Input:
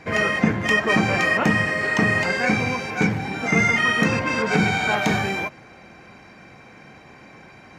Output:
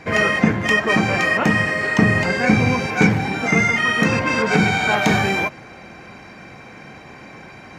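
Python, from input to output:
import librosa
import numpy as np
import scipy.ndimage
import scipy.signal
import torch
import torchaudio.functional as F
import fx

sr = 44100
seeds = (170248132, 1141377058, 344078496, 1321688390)

y = fx.low_shelf(x, sr, hz=340.0, db=7.5, at=(1.98, 2.87))
y = fx.rider(y, sr, range_db=10, speed_s=0.5)
y = y * 10.0 ** (2.5 / 20.0)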